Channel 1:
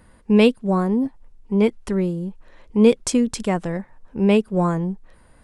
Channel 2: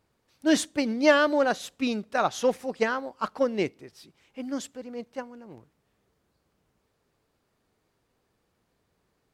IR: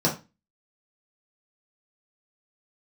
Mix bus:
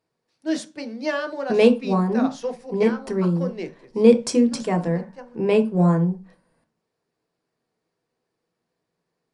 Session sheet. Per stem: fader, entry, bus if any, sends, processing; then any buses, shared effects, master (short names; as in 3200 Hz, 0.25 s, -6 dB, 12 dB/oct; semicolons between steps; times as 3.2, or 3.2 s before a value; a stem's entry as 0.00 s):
-5.5 dB, 1.20 s, send -13 dB, gate -45 dBFS, range -10 dB
-8.0 dB, 0.00 s, send -16.5 dB, dry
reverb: on, RT60 0.25 s, pre-delay 3 ms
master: brick-wall FIR low-pass 11000 Hz; low shelf 220 Hz -8 dB